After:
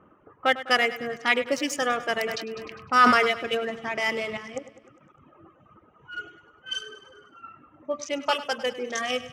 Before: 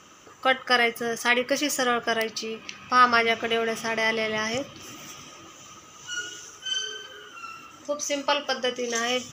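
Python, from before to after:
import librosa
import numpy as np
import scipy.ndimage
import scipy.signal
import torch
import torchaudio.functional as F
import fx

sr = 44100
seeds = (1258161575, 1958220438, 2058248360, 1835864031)

y = fx.wiener(x, sr, points=9)
y = fx.dereverb_blind(y, sr, rt60_s=1.5)
y = fx.env_lowpass(y, sr, base_hz=970.0, full_db=-23.5)
y = fx.level_steps(y, sr, step_db=14, at=(4.37, 5.22))
y = fx.echo_feedback(y, sr, ms=101, feedback_pct=58, wet_db=-15.0)
y = fx.sustainer(y, sr, db_per_s=38.0, at=(2.16, 3.27), fade=0.02)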